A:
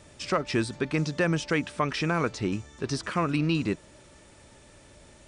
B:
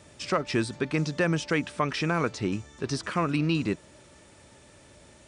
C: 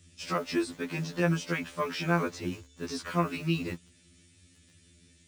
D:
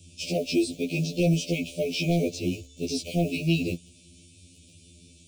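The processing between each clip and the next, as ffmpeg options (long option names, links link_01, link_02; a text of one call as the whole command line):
ffmpeg -i in.wav -af "highpass=60" out.wav
ffmpeg -i in.wav -filter_complex "[0:a]acrossover=split=330|1900[link_01][link_02][link_03];[link_02]acrusher=bits=7:mix=0:aa=0.000001[link_04];[link_01][link_04][link_03]amix=inputs=3:normalize=0,afftfilt=real='re*2*eq(mod(b,4),0)':imag='im*2*eq(mod(b,4),0)':win_size=2048:overlap=0.75,volume=-1.5dB" out.wav
ffmpeg -i in.wav -filter_complex "[0:a]acrossover=split=5400[link_01][link_02];[link_01]asoftclip=type=tanh:threshold=-21.5dB[link_03];[link_03][link_02]amix=inputs=2:normalize=0,asuperstop=centerf=1300:order=20:qfactor=0.8,volume=7dB" out.wav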